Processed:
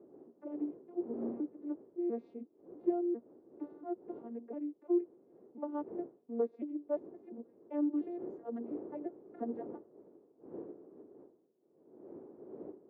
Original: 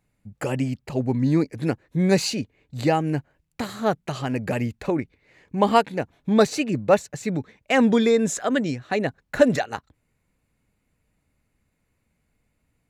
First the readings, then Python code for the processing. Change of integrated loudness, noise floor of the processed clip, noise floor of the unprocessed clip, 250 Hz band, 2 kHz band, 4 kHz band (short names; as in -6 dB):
-16.5 dB, -70 dBFS, -73 dBFS, -14.0 dB, under -35 dB, under -40 dB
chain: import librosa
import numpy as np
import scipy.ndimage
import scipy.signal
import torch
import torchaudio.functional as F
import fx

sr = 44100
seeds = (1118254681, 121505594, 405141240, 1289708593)

p1 = fx.vocoder_arp(x, sr, chord='major triad', root=58, every_ms=348)
p2 = fx.dmg_wind(p1, sr, seeds[0], corner_hz=280.0, level_db=-34.0)
p3 = np.clip(p2, -10.0 ** (-17.5 / 20.0), 10.0 ** (-17.5 / 20.0))
p4 = p2 + (p3 * librosa.db_to_amplitude(-8.5))
p5 = fx.ladder_bandpass(p4, sr, hz=430.0, resonance_pct=55)
y = p5 * librosa.db_to_amplitude(-7.0)